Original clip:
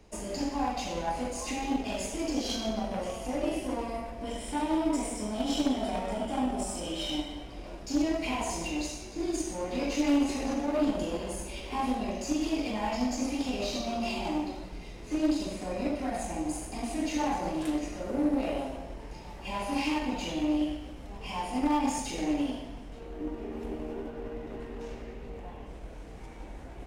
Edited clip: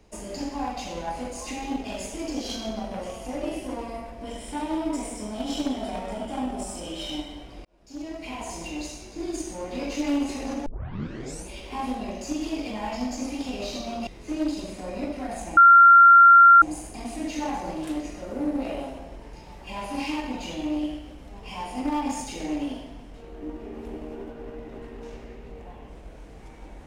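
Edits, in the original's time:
0:07.65–0:09.19: fade in equal-power
0:10.66: tape start 0.82 s
0:14.07–0:14.90: remove
0:16.40: insert tone 1,380 Hz −8.5 dBFS 1.05 s

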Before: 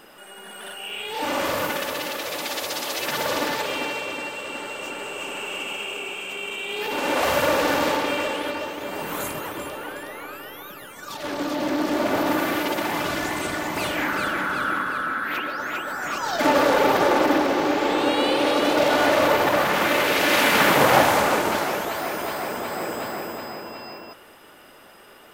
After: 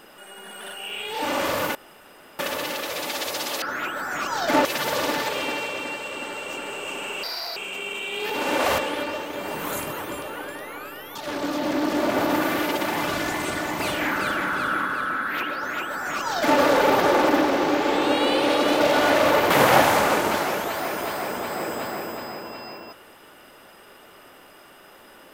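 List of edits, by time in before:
0:01.75: splice in room tone 0.64 s
0:05.56–0:06.13: play speed 171%
0:07.35–0:08.26: remove
0:10.63–0:11.12: remove
0:15.53–0:16.56: duplicate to 0:02.98
0:19.47–0:20.71: remove

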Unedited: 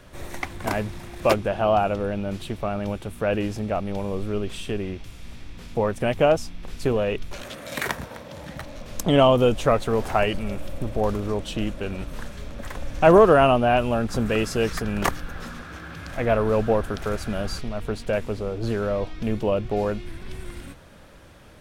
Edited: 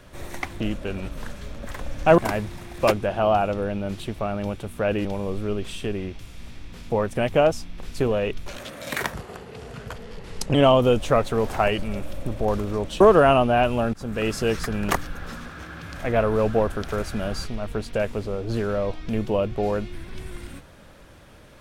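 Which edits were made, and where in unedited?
0:03.47–0:03.90: remove
0:07.99–0:09.10: play speed 79%
0:11.56–0:13.14: move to 0:00.60
0:14.07–0:14.47: fade in, from −15.5 dB

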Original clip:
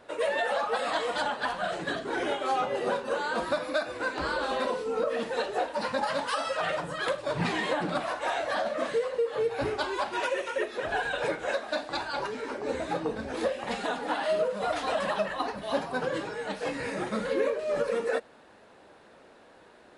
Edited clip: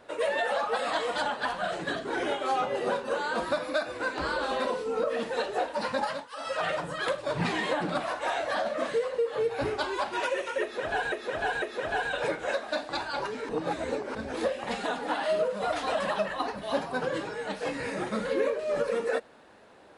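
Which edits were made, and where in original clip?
0:06.03–0:06.55: duck −22.5 dB, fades 0.26 s
0:10.62–0:11.12: repeat, 3 plays
0:12.49–0:13.15: reverse

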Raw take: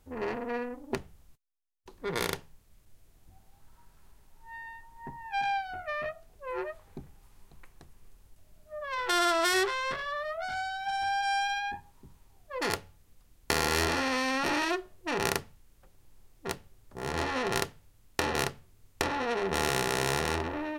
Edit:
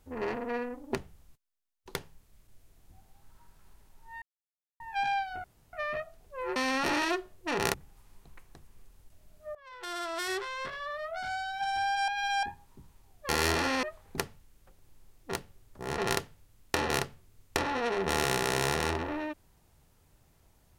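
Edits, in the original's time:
0:01.95–0:02.33: remove
0:04.60–0:05.18: silence
0:05.82: splice in room tone 0.29 s
0:06.65–0:07.00: swap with 0:14.16–0:15.34
0:08.81–0:10.81: fade in, from −20.5 dB
0:11.34–0:11.69: reverse
0:12.55–0:13.62: remove
0:17.14–0:17.43: remove

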